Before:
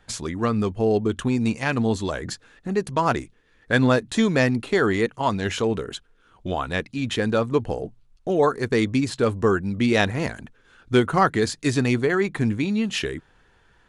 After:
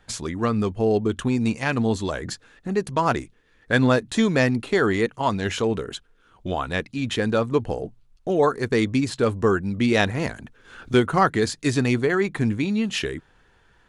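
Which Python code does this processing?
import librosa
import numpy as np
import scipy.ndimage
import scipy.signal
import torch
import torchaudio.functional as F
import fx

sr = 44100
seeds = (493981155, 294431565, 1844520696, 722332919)

y = fx.band_squash(x, sr, depth_pct=100, at=(10.31, 10.94))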